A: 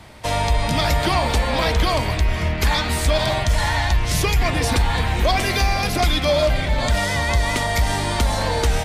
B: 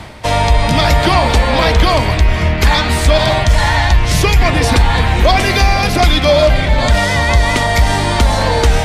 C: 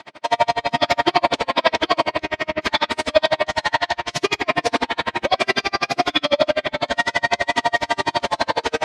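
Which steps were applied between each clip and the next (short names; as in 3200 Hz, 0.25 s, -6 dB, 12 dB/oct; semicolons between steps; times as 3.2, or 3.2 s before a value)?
high shelf 8200 Hz -8 dB; reverse; upward compressor, threshold -24 dBFS; reverse; gain +8 dB
BPF 380–5700 Hz; shoebox room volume 830 m³, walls furnished, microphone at 2.8 m; dB-linear tremolo 12 Hz, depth 39 dB; gain -2 dB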